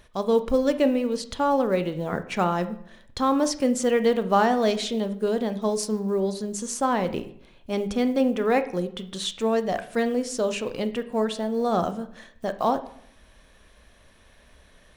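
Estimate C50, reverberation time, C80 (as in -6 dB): 14.0 dB, 0.65 s, 17.0 dB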